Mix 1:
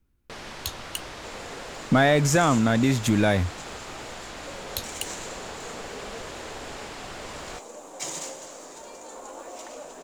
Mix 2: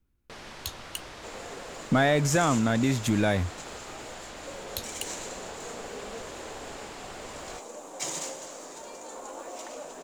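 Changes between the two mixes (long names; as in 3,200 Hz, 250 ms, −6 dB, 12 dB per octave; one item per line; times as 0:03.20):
speech −3.5 dB
first sound −4.5 dB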